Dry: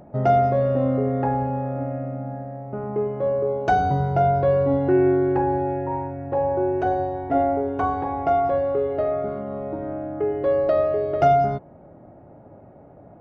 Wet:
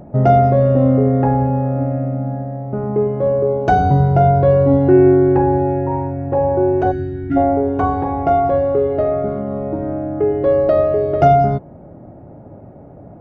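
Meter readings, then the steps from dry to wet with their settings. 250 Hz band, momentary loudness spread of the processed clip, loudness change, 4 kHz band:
+8.5 dB, 11 LU, +6.5 dB, can't be measured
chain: gain on a spectral selection 0:06.91–0:07.37, 370–1,300 Hz −24 dB
low-shelf EQ 470 Hz +8.5 dB
level +2.5 dB

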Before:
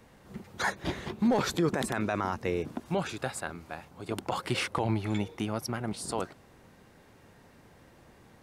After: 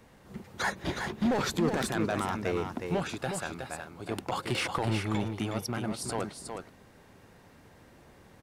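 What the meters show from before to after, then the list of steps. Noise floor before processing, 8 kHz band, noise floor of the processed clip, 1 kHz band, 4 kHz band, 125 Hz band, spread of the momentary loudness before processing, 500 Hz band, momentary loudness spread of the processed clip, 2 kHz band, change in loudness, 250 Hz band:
−58 dBFS, +1.0 dB, −57 dBFS, 0.0 dB, +1.0 dB, +0.5 dB, 13 LU, −0.5 dB, 12 LU, +0.5 dB, 0.0 dB, −0.5 dB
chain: hard clipping −23 dBFS, distortion −15 dB
single-tap delay 366 ms −6 dB

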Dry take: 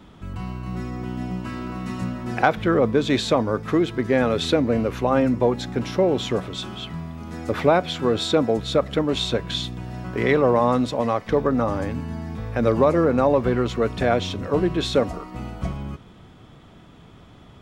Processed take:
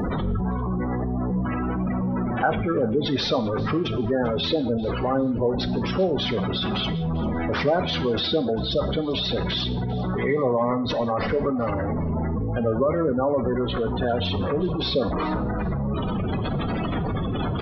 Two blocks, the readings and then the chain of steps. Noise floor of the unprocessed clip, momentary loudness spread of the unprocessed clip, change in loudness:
−47 dBFS, 13 LU, −2.0 dB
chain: linear delta modulator 32 kbit/s, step −14.5 dBFS
gate on every frequency bin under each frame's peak −15 dB strong
on a send: repeating echo 395 ms, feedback 16%, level −20.5 dB
on the sum: reverb whose tail is shaped and stops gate 220 ms falling, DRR 10 dB
level −4 dB

